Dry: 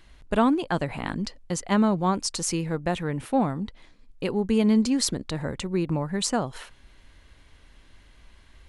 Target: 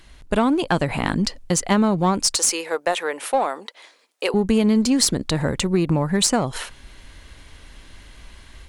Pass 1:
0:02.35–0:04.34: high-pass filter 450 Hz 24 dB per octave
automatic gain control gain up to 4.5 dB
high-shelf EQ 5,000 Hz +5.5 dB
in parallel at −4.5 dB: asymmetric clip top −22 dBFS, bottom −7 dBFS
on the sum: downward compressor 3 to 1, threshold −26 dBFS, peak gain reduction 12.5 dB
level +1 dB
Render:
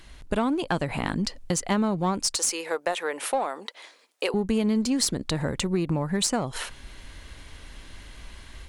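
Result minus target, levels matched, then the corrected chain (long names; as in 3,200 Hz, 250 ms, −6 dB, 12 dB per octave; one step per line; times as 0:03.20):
downward compressor: peak gain reduction +6.5 dB
0:02.35–0:04.34: high-pass filter 450 Hz 24 dB per octave
automatic gain control gain up to 4.5 dB
high-shelf EQ 5,000 Hz +5.5 dB
in parallel at −4.5 dB: asymmetric clip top −22 dBFS, bottom −7 dBFS
on the sum: downward compressor 3 to 1, threshold −16.5 dBFS, peak gain reduction 6 dB
level +1 dB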